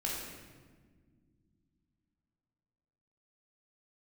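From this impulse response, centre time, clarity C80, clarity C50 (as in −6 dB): 80 ms, 2.5 dB, 0.0 dB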